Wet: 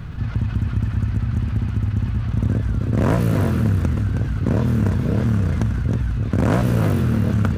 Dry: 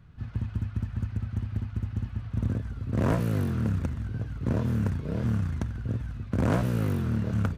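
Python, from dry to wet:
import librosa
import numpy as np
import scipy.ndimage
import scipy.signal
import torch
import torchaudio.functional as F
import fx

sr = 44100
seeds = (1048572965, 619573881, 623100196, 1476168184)

p1 = x + fx.echo_single(x, sr, ms=318, db=-8.0, dry=0)
p2 = fx.env_flatten(p1, sr, amount_pct=50)
y = p2 * librosa.db_to_amplitude(6.0)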